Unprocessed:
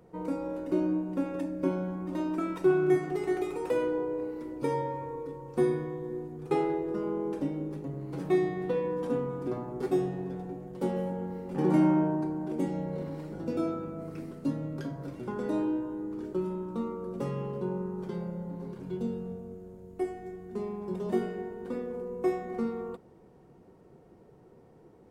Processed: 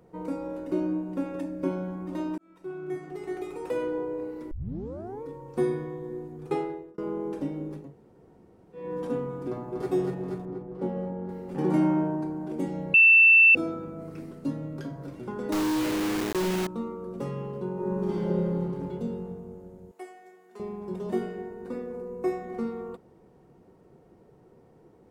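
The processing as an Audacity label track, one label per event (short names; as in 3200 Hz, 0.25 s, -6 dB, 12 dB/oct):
2.380000	3.990000	fade in
4.510000	4.510000	tape start 0.72 s
6.490000	6.980000	fade out
7.850000	8.840000	room tone, crossfade 0.24 s
9.480000	9.900000	echo throw 0.24 s, feedback 75%, level -3.5 dB
10.450000	11.290000	LPF 1100 Hz 6 dB/oct
12.940000	13.550000	bleep 2670 Hz -12.5 dBFS
15.520000	16.670000	companded quantiser 2-bit
17.740000	18.590000	reverb throw, RT60 2.8 s, DRR -7.5 dB
19.910000	20.600000	Bessel high-pass 870 Hz
21.460000	22.440000	notch 3200 Hz, Q 5.5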